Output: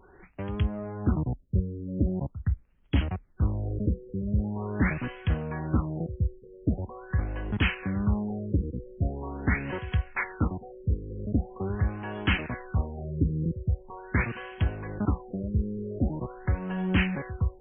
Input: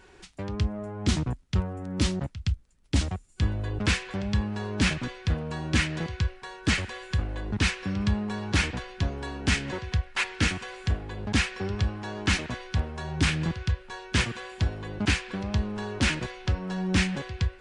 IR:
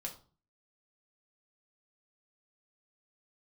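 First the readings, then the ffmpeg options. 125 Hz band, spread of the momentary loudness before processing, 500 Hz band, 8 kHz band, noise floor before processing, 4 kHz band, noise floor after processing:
0.0 dB, 6 LU, 0.0 dB, under -40 dB, -54 dBFS, -11.0 dB, -56 dBFS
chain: -af "afftfilt=real='re*lt(b*sr/1024,520*pow(3400/520,0.5+0.5*sin(2*PI*0.43*pts/sr)))':imag='im*lt(b*sr/1024,520*pow(3400/520,0.5+0.5*sin(2*PI*0.43*pts/sr)))':win_size=1024:overlap=0.75"

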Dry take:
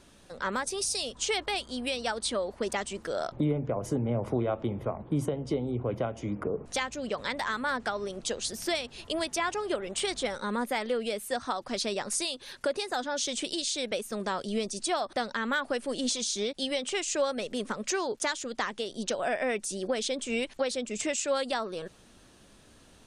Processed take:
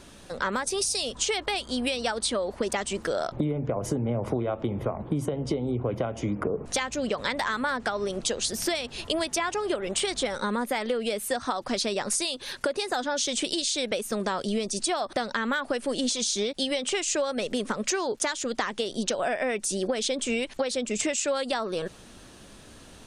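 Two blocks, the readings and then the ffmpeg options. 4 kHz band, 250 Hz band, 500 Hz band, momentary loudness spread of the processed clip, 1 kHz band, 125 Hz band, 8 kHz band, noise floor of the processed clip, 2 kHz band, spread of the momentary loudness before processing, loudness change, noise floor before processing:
+3.5 dB, +3.5 dB, +3.0 dB, 4 LU, +2.5 dB, +2.0 dB, +4.5 dB, -49 dBFS, +2.5 dB, 4 LU, +3.0 dB, -57 dBFS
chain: -af "acompressor=threshold=-32dB:ratio=6,volume=8dB"

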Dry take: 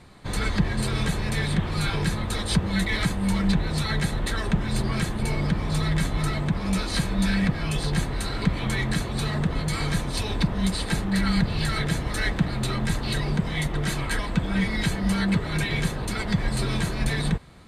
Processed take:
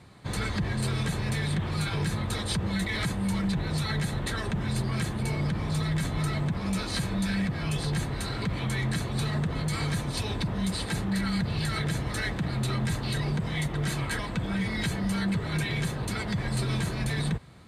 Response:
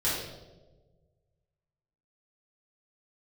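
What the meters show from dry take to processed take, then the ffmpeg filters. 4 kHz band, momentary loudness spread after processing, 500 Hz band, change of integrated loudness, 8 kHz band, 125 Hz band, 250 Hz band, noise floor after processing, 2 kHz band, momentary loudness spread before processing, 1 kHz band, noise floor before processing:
-4.0 dB, 2 LU, -3.5 dB, -3.5 dB, -3.5 dB, -2.5 dB, -4.0 dB, -34 dBFS, -4.5 dB, 3 LU, -4.0 dB, -31 dBFS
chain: -filter_complex "[0:a]highpass=56,equalizer=f=120:t=o:w=0.71:g=5,acrossover=split=6200[a][b];[a]alimiter=limit=-17.5dB:level=0:latency=1:release=31[c];[c][b]amix=inputs=2:normalize=0,volume=-3dB"

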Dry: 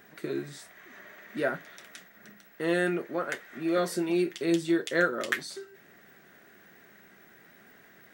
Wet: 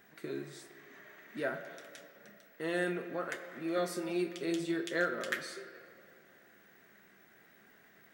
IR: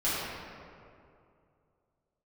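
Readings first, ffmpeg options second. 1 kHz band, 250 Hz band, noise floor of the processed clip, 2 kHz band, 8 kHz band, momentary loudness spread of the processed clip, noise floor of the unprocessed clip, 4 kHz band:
-6.0 dB, -7.5 dB, -62 dBFS, -6.0 dB, -6.0 dB, 20 LU, -57 dBFS, -5.5 dB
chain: -filter_complex "[0:a]bandreject=f=84.86:t=h:w=4,bandreject=f=169.72:t=h:w=4,bandreject=f=254.58:t=h:w=4,bandreject=f=339.44:t=h:w=4,bandreject=f=424.3:t=h:w=4,bandreject=f=509.16:t=h:w=4,bandreject=f=594.02:t=h:w=4,bandreject=f=678.88:t=h:w=4,bandreject=f=763.74:t=h:w=4,bandreject=f=848.6:t=h:w=4,bandreject=f=933.46:t=h:w=4,bandreject=f=1.01832k:t=h:w=4,bandreject=f=1.10318k:t=h:w=4,bandreject=f=1.18804k:t=h:w=4,bandreject=f=1.2729k:t=h:w=4,bandreject=f=1.35776k:t=h:w=4,bandreject=f=1.44262k:t=h:w=4,bandreject=f=1.52748k:t=h:w=4,asoftclip=type=hard:threshold=-15dB,asplit=2[a][b];[1:a]atrim=start_sample=2205,lowshelf=f=360:g=-9[c];[b][c]afir=irnorm=-1:irlink=0,volume=-17dB[d];[a][d]amix=inputs=2:normalize=0,volume=-7dB"

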